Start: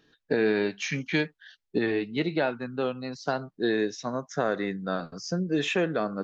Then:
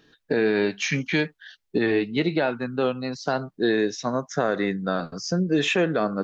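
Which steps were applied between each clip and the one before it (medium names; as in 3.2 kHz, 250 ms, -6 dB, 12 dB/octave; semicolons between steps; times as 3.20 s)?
peak limiter -18 dBFS, peak gain reduction 4.5 dB; trim +5.5 dB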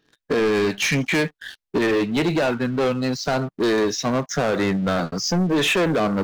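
waveshaping leveller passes 3; trim -2.5 dB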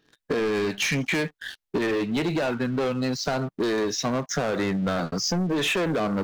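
compression, threshold -23 dBFS, peak gain reduction 6 dB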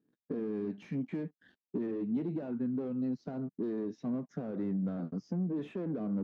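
band-pass filter 230 Hz, Q 1.9; trim -4.5 dB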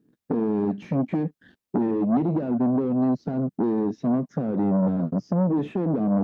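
bass shelf 390 Hz +8.5 dB; transformer saturation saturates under 450 Hz; trim +7.5 dB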